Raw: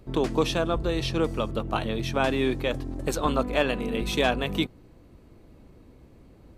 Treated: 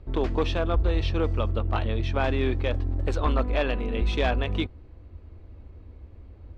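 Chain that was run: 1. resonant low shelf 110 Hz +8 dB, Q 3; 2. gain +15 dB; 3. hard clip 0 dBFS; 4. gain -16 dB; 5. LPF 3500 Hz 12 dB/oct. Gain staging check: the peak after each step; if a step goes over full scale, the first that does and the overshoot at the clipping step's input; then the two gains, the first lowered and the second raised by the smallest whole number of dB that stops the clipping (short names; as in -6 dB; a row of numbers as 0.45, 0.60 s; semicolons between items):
-7.5, +7.5, 0.0, -16.0, -15.5 dBFS; step 2, 7.5 dB; step 2 +7 dB, step 4 -8 dB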